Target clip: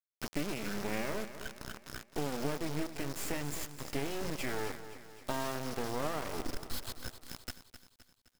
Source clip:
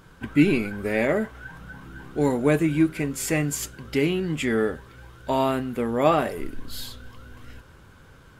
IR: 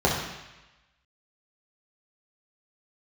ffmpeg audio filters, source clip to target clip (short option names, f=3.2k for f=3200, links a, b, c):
-filter_complex "[0:a]asettb=1/sr,asplit=3[a][b][c];[a]atrim=end=4.304[d];[b]atrim=start=4.3:end=6.34,asetpts=PTS-STARTPTS,afade=t=in:d=0.004:c=qsin,afade=t=out:st=2.036:d=0.004:c=qsin,highpass=230[e];[c]atrim=start=6.336[f];[d][e]acrossfade=d=0.004:c1=hsin:c2=qsin[g];[g][f]acrossfade=d=0.004:c1=qsin:c2=hsin,acompressor=threshold=-27dB:ratio=12,aeval=exprs='val(0)+0.00398*sin(2*PI*5200*n/s)':c=same,acrusher=bits=3:dc=4:mix=0:aa=0.000001,aecho=1:1:259|518|777|1036|1295:0.251|0.123|0.0603|0.0296|0.0145,adynamicequalizer=threshold=0.00282:dfrequency=2100:dqfactor=0.7:tfrequency=2100:tqfactor=0.7:attack=5:release=100:ratio=0.375:range=2:mode=cutabove:tftype=highshelf,volume=-2dB"